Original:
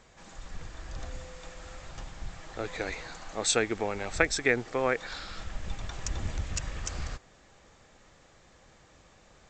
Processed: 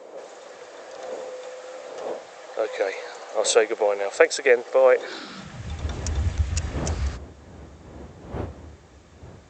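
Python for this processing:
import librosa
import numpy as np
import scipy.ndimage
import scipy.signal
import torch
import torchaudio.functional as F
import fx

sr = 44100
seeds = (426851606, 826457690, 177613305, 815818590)

y = fx.dmg_wind(x, sr, seeds[0], corner_hz=480.0, level_db=-45.0)
y = fx.filter_sweep_highpass(y, sr, from_hz=520.0, to_hz=73.0, start_s=4.97, end_s=5.78, q=3.9)
y = F.gain(torch.from_numpy(y), 3.0).numpy()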